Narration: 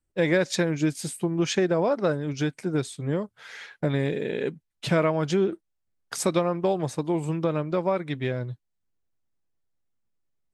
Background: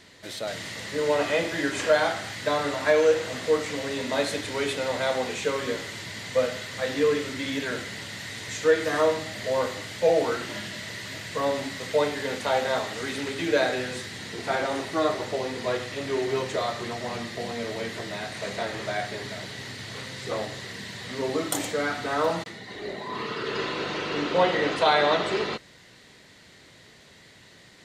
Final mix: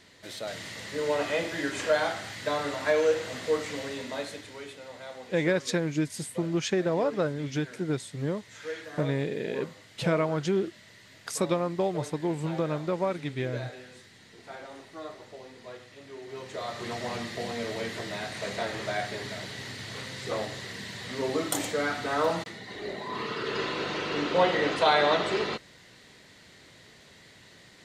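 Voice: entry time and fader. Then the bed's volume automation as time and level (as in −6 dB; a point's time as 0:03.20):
5.15 s, −3.5 dB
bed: 0:03.80 −4 dB
0:04.78 −16.5 dB
0:16.21 −16.5 dB
0:16.93 −1.5 dB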